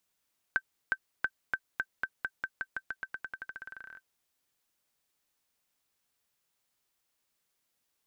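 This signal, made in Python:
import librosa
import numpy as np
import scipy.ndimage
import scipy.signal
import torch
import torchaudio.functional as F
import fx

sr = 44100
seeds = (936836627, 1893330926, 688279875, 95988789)

y = fx.bouncing_ball(sr, first_gap_s=0.36, ratio=0.9, hz=1550.0, decay_ms=57.0, level_db=-15.5)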